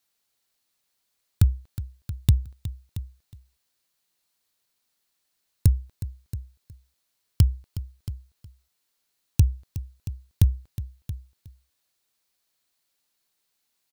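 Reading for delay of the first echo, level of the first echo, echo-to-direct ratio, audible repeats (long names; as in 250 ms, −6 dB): 365 ms, −14.5 dB, −11.5 dB, 3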